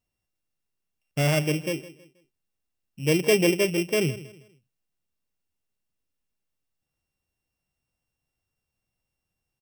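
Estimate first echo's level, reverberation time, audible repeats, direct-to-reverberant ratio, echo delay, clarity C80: -17.0 dB, none, 2, none, 0.16 s, none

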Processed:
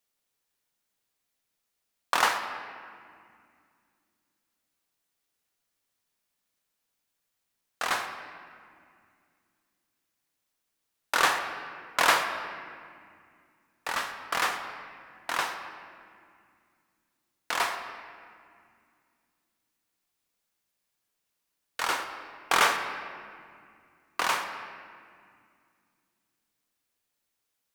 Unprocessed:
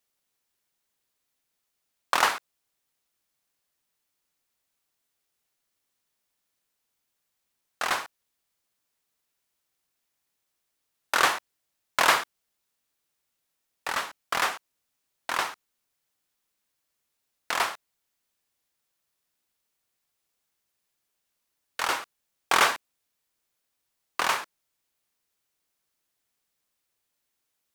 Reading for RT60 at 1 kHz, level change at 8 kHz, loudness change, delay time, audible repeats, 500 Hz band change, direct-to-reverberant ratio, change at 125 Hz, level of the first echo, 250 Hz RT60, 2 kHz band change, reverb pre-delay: 2.1 s, -1.5 dB, -2.0 dB, none, none, -1.0 dB, 5.0 dB, -0.5 dB, none, 3.4 s, -0.5 dB, 4 ms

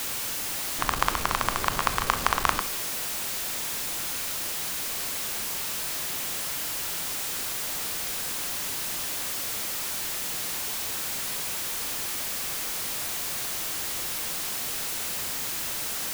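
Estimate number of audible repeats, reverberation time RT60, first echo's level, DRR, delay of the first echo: none, 0.65 s, none, 10.5 dB, none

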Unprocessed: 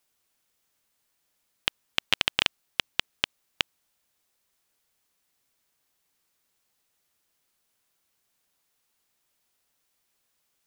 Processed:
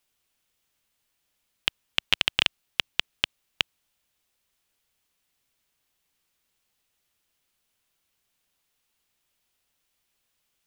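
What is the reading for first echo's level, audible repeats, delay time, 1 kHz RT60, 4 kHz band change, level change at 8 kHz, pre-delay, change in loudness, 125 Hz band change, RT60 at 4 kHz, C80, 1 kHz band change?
none, none, none, none, +2.0 dB, -1.5 dB, none, +1.5 dB, +1.5 dB, none, none, -1.5 dB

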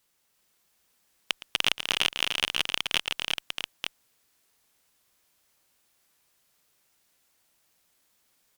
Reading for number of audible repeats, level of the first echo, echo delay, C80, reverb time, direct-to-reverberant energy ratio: 6, -17.5 dB, 0.114 s, none, none, none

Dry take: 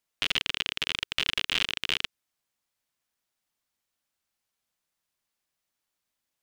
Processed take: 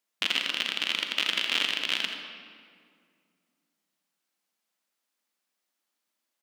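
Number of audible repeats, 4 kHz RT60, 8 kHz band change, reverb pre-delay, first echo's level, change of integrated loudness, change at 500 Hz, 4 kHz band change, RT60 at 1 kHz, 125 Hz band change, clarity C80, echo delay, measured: 1, 1.4 s, +1.0 dB, 37 ms, -11.0 dB, +1.5 dB, +2.5 dB, +1.5 dB, 2.0 s, under -10 dB, 5.0 dB, 83 ms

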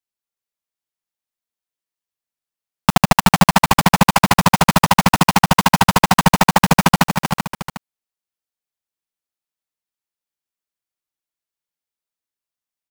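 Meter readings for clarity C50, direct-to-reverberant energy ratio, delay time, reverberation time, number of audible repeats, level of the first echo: none, none, 0.155 s, none, 4, -20.0 dB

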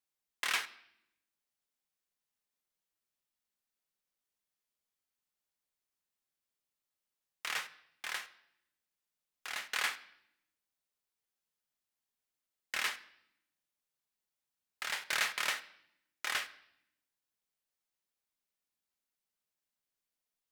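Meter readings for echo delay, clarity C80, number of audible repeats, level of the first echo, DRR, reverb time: none, 19.5 dB, none, none, 10.5 dB, 0.75 s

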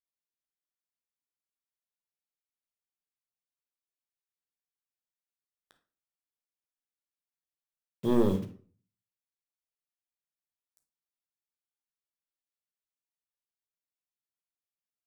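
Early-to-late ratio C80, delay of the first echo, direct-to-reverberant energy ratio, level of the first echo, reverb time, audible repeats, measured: 16.0 dB, none, 5.5 dB, none, 0.45 s, none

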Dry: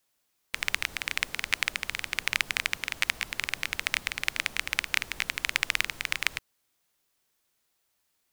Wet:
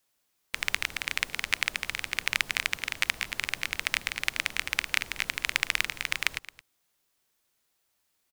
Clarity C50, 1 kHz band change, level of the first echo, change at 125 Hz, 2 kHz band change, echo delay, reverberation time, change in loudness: none, 0.0 dB, -18.0 dB, 0.0 dB, 0.0 dB, 0.22 s, none, 0.0 dB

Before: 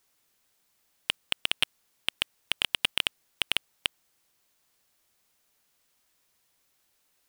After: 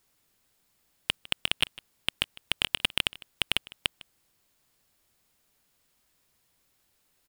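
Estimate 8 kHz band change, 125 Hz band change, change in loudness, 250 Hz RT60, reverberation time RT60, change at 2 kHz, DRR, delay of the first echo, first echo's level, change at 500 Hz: 0.0 dB, +7.0 dB, 0.0 dB, none, none, 0.0 dB, none, 0.154 s, -20.5 dB, +2.0 dB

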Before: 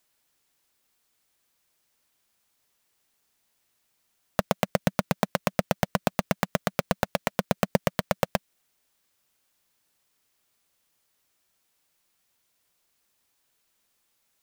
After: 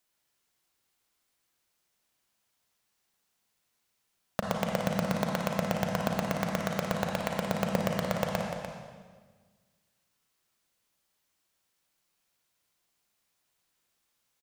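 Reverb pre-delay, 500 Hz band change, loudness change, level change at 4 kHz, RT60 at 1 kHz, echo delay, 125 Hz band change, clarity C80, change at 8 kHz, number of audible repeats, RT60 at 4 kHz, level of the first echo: 34 ms, -2.5 dB, -3.0 dB, -3.0 dB, 1.4 s, 0.296 s, -1.5 dB, 2.0 dB, -4.0 dB, 1, 1.3 s, -8.5 dB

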